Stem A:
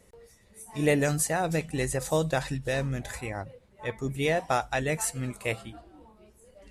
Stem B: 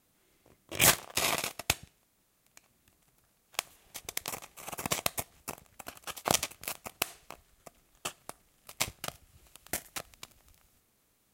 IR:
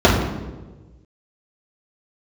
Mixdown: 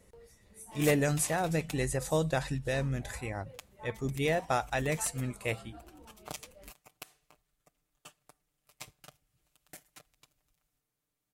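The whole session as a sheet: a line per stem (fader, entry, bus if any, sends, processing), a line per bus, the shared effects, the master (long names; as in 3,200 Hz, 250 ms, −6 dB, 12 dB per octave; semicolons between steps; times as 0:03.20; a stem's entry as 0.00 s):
−3.5 dB, 0.00 s, no send, no processing
−17.0 dB, 0.00 s, no send, comb filter 6.7 ms, depth 71%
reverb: not used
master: low-shelf EQ 180 Hz +3 dB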